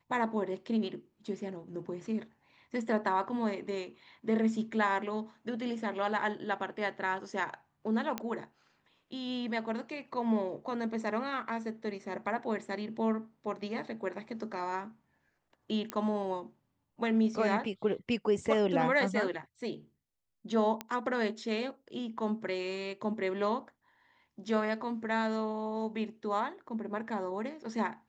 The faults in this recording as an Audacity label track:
8.180000	8.180000	pop -18 dBFS
15.900000	15.900000	pop -19 dBFS
20.810000	20.810000	pop -20 dBFS

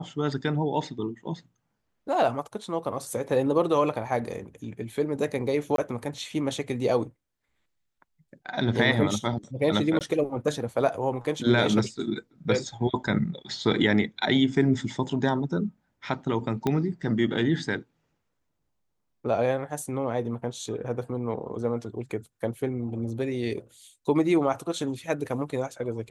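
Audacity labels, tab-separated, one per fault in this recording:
5.760000	5.780000	dropout 22 ms
9.990000	10.010000	dropout 18 ms
16.670000	16.670000	pop -13 dBFS

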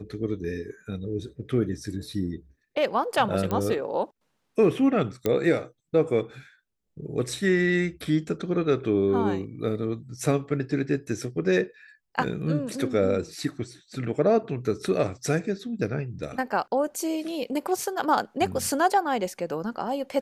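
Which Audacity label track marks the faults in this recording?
3.510000	3.510000	pop -15 dBFS
5.260000	5.260000	pop -11 dBFS

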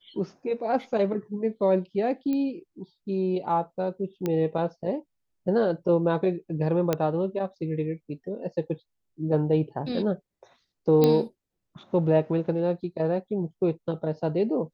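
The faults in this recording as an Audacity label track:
2.330000	2.330000	pop -19 dBFS
4.260000	4.260000	pop -15 dBFS
6.930000	6.930000	pop -10 dBFS
11.040000	11.040000	pop -9 dBFS

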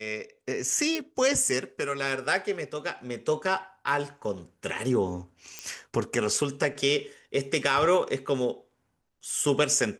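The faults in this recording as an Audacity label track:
0.950000	0.950000	pop
5.590000	5.590000	pop -18 dBFS

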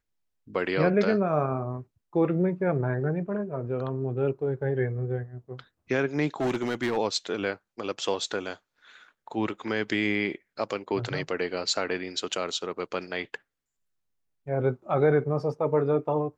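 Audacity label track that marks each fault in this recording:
6.400000	6.980000	clipped -23 dBFS

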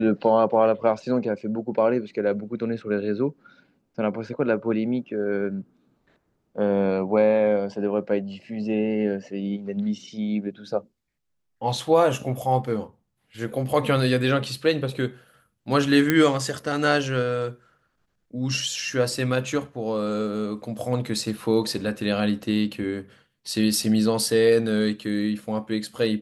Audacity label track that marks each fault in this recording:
16.100000	16.100000	pop -6 dBFS

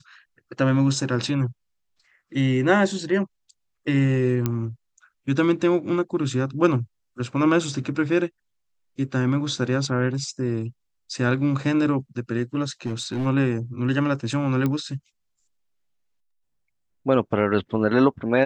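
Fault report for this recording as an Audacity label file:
4.460000	4.460000	pop -10 dBFS
12.860000	13.270000	clipped -21.5 dBFS
14.660000	14.660000	pop -13 dBFS

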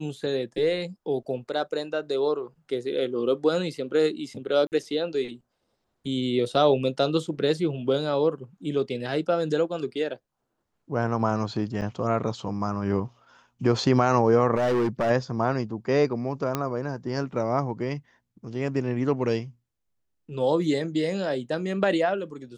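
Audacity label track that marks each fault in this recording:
4.670000	4.720000	dropout 49 ms
11.810000	11.820000	dropout 7.7 ms
14.560000	15.110000	clipped -20 dBFS
16.550000	16.550000	pop -11 dBFS

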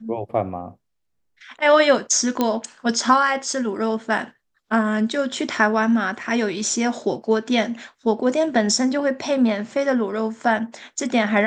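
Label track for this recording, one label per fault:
2.410000	2.410000	pop -7 dBFS

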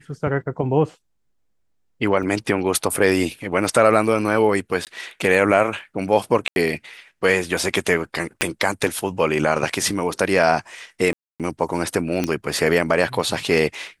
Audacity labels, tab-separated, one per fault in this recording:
2.230000	2.230000	dropout 2.2 ms
4.850000	4.870000	dropout 18 ms
6.480000	6.560000	dropout 81 ms
8.410000	8.410000	pop -5 dBFS
11.130000	11.400000	dropout 267 ms
12.240000	12.240000	pop -8 dBFS

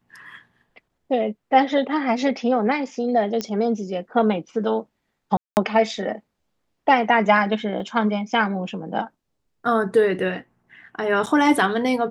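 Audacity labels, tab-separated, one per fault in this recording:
3.410000	3.410000	pop -12 dBFS
5.370000	5.570000	dropout 199 ms
7.800000	7.800000	dropout 2.4 ms
11.260000	11.270000	dropout 7.3 ms

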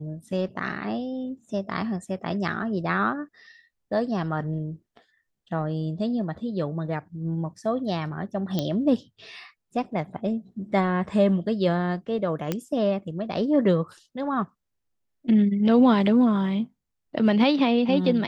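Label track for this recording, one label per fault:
8.590000	8.590000	pop -13 dBFS
12.520000	12.520000	pop -12 dBFS

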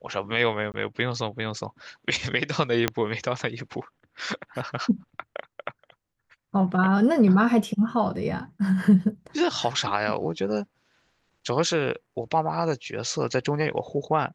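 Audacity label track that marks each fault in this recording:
0.720000	0.740000	dropout 19 ms
2.880000	2.880000	pop -7 dBFS

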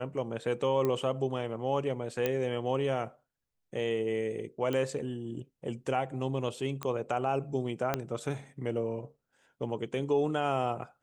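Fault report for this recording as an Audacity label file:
0.850000	0.850000	pop -18 dBFS
2.260000	2.260000	pop -15 dBFS
4.730000	4.730000	pop -20 dBFS
6.830000	6.830000	pop -20 dBFS
7.940000	7.940000	pop -14 dBFS

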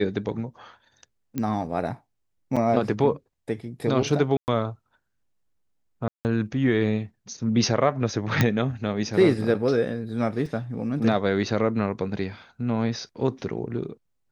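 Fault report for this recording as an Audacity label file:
1.380000	1.380000	pop -14 dBFS
2.560000	2.570000	dropout 6.1 ms
4.370000	4.480000	dropout 109 ms
6.080000	6.250000	dropout 169 ms
8.410000	8.410000	pop -6 dBFS
10.460000	10.460000	dropout 2.5 ms

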